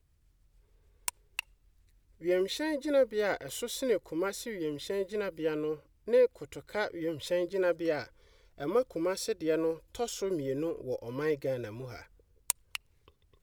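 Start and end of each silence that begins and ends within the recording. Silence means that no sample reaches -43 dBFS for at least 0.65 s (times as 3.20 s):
1.40–2.22 s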